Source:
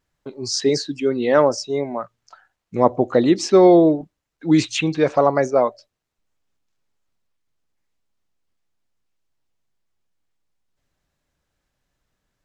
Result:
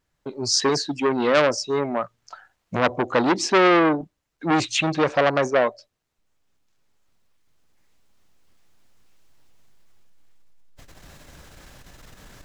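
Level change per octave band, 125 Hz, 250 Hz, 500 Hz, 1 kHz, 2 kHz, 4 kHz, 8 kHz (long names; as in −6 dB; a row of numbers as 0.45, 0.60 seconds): −4.0, −5.5, −4.5, 0.0, +6.0, +2.5, +2.0 decibels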